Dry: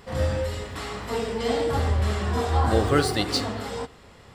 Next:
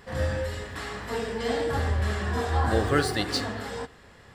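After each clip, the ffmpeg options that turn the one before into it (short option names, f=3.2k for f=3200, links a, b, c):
-af "equalizer=f=1.7k:t=o:w=0.23:g=9.5,volume=-3dB"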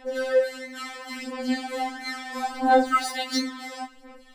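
-af "aphaser=in_gain=1:out_gain=1:delay=3.4:decay=0.73:speed=0.73:type=sinusoidal,afftfilt=real='re*3.46*eq(mod(b,12),0)':imag='im*3.46*eq(mod(b,12),0)':win_size=2048:overlap=0.75"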